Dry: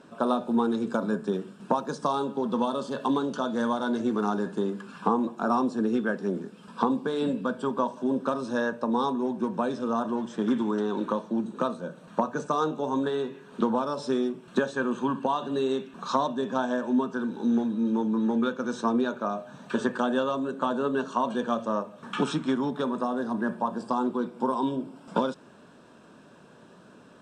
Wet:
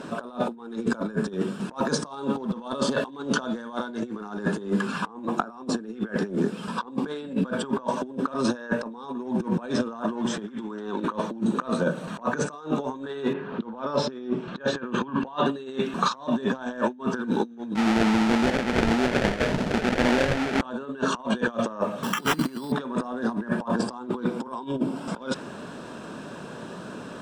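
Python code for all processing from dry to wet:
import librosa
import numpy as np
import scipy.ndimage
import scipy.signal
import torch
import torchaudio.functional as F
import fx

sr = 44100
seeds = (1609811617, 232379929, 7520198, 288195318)

y = fx.chain(x, sr, fx.air_absorb(metres=120.0),
    fx.env_lowpass(base_hz=2200.0, full_db=-26.0), at=(13.33, 15.46))
y = fx.chain(y, sr, fx.over_compress(threshold_db=-33.0, ratio=-1.0),
    fx.sample_hold(seeds[0], rate_hz=1100.0, jitter_pct=20),
    fx.air_absorb(metres=81.0), at=(17.75, 20.61))
y = fx.chain(y, sr, fx.high_shelf(hz=3200.0, db=-8.0),
    fx.sample_hold(seeds[1], rate_hz=4400.0, jitter_pct=0), at=(22.03, 22.72))
y = fx.dynamic_eq(y, sr, hz=2000.0, q=1.1, threshold_db=-44.0, ratio=4.0, max_db=6)
y = fx.over_compress(y, sr, threshold_db=-34.0, ratio=-0.5)
y = F.gain(torch.from_numpy(y), 7.5).numpy()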